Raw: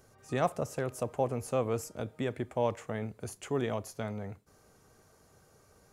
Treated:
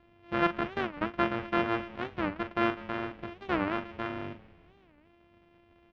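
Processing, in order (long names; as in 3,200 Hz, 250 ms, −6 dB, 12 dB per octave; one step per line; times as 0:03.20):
samples sorted by size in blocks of 128 samples
low-pass filter 3,200 Hz 24 dB per octave
parametric band 120 Hz −5 dB 0.39 octaves
double-tracking delay 41 ms −9.5 dB
echo with shifted repeats 197 ms, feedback 54%, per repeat −130 Hz, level −19 dB
dynamic equaliser 1,400 Hz, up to +8 dB, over −49 dBFS, Q 1.7
wow of a warped record 45 rpm, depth 250 cents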